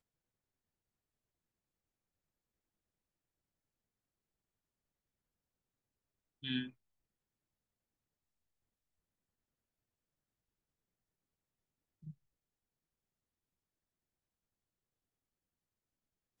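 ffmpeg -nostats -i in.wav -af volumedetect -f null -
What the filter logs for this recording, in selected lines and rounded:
mean_volume: -55.9 dB
max_volume: -24.8 dB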